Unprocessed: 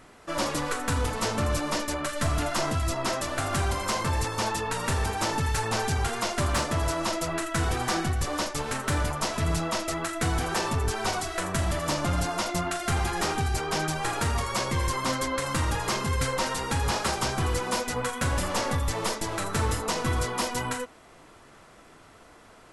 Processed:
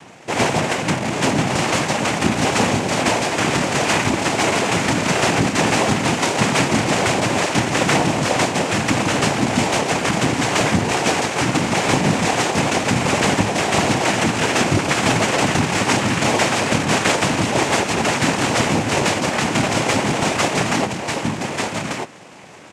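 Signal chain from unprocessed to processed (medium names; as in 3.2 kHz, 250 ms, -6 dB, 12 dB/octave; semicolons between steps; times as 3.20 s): square wave that keeps the level; delay 1193 ms -4 dB; noise-vocoded speech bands 4; trim +6 dB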